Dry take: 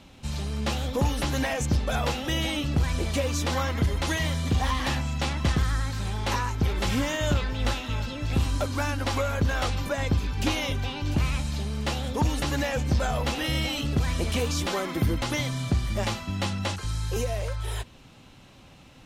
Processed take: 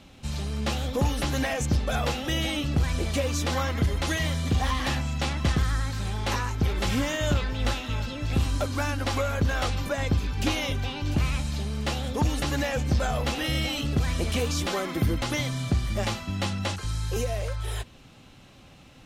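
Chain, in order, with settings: band-stop 950 Hz, Q 14

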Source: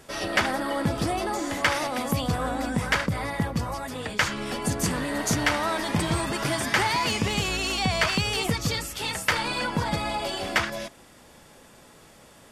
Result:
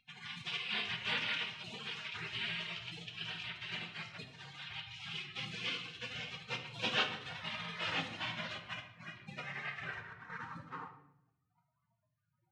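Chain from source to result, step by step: high-pass 290 Hz 24 dB/octave; spectral gate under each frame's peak -30 dB weak; low-pass sweep 3 kHz -> 910 Hz, 8.67–11.35 s; 9.93–10.58 s: compressor with a negative ratio -60 dBFS, ratio -0.5; tape spacing loss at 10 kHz 22 dB; simulated room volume 200 m³, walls mixed, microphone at 0.59 m; trim +15 dB

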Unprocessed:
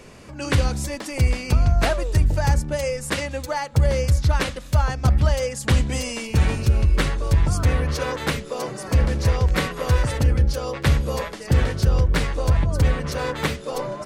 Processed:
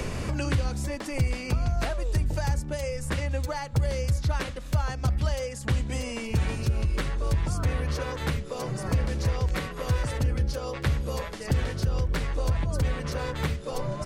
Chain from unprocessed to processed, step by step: three bands compressed up and down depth 100%; trim -8 dB

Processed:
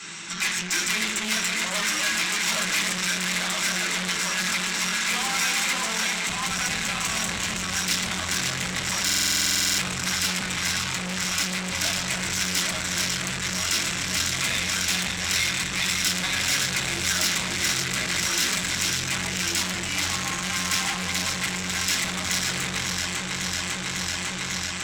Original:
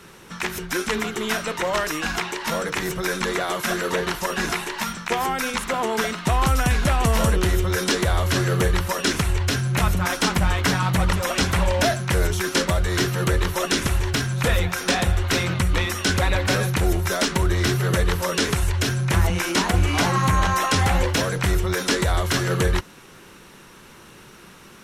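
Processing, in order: brick-wall FIR low-pass 8.3 kHz; on a send: echo whose repeats swap between lows and highs 275 ms, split 920 Hz, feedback 87%, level -5 dB; on the sum: reverberation RT60 1.1 s, pre-delay 3 ms, DRR -3.5 dB; in parallel at -6 dB: hard clipper -16.5 dBFS, distortion -9 dB; on the sum: peaking EQ 180 Hz +12.5 dB 0.64 oct; level rider; valve stage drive 16 dB, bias 0.7; peak limiter -22.5 dBFS, peak gain reduction 10 dB; tilt shelf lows -9.5 dB, about 1.3 kHz; buffer glitch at 9.04 s, samples 2048, times 15; trim +1.5 dB

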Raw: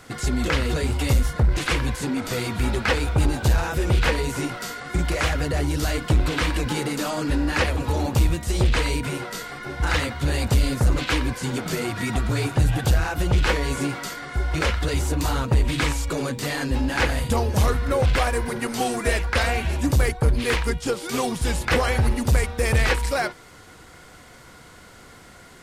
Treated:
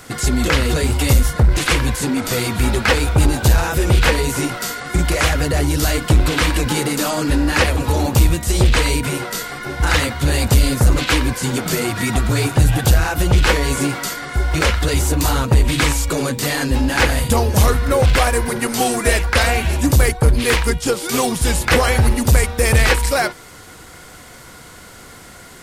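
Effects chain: treble shelf 7.6 kHz +8.5 dB; trim +6 dB

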